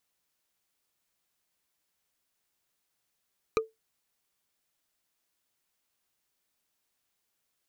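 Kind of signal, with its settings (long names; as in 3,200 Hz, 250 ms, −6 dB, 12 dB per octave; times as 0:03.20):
struck wood, lowest mode 444 Hz, decay 0.18 s, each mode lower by 3 dB, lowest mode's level −19 dB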